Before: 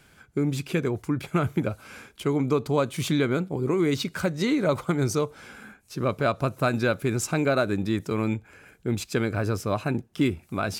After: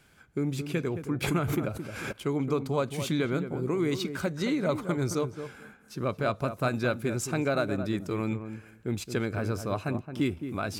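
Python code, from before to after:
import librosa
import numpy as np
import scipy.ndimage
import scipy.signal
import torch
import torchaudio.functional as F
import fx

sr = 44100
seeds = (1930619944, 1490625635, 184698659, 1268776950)

y = fx.echo_filtered(x, sr, ms=219, feedback_pct=15, hz=1100.0, wet_db=-8.5)
y = fx.pre_swell(y, sr, db_per_s=41.0, at=(1.21, 2.11), fade=0.02)
y = y * librosa.db_to_amplitude(-4.5)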